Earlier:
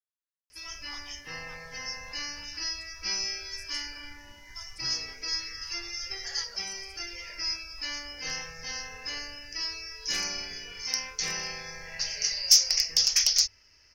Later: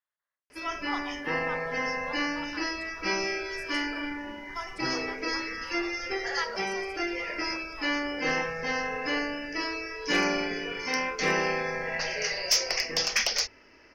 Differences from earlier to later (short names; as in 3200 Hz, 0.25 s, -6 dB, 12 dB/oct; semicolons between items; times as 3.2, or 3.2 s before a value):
speech +5.0 dB; master: remove EQ curve 100 Hz 0 dB, 280 Hz -20 dB, 2400 Hz -8 dB, 5600 Hz +7 dB